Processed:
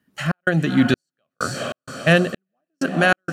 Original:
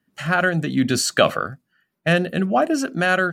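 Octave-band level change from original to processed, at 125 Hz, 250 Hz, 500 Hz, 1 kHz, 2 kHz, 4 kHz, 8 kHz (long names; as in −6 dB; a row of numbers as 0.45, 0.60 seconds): +2.0, +1.0, −2.0, −3.5, −0.5, −2.5, −8.5 decibels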